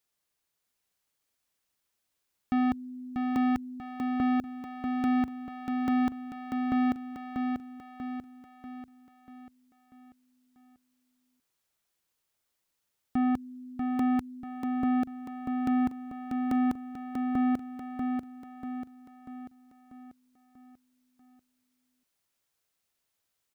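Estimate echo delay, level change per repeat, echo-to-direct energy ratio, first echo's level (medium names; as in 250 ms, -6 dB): 640 ms, -6.0 dB, -3.0 dB, -4.5 dB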